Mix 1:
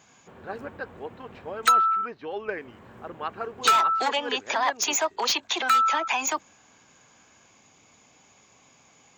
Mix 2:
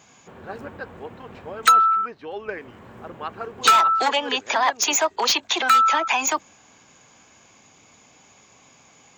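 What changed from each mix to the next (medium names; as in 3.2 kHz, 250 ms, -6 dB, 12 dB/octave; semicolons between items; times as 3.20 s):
speech: remove distance through air 61 m; background +4.5 dB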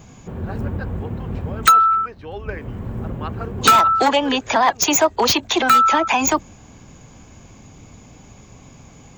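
background: remove high-pass 1.2 kHz 6 dB/octave; master: add treble shelf 11 kHz +11 dB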